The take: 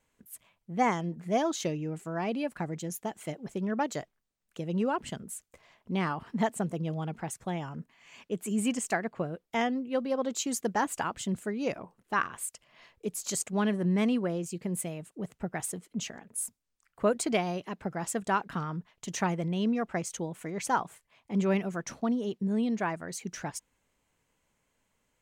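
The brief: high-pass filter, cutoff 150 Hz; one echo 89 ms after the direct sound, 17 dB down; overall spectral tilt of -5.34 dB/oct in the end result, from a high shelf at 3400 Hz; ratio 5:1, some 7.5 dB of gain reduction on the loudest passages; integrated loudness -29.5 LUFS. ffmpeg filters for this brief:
-af "highpass=150,highshelf=f=3.4k:g=-7.5,acompressor=threshold=-30dB:ratio=5,aecho=1:1:89:0.141,volume=7.5dB"

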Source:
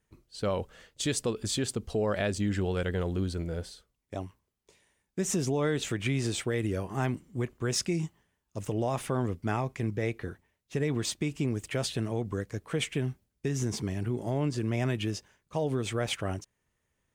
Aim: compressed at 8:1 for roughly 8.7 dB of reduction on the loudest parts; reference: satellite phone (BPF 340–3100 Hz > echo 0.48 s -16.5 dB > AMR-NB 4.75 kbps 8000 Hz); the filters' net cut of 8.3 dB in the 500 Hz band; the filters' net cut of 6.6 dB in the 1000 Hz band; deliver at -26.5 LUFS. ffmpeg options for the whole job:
-af "equalizer=f=500:t=o:g=-7.5,equalizer=f=1k:t=o:g=-6,acompressor=threshold=-36dB:ratio=8,highpass=340,lowpass=3.1k,aecho=1:1:480:0.15,volume=23dB" -ar 8000 -c:a libopencore_amrnb -b:a 4750

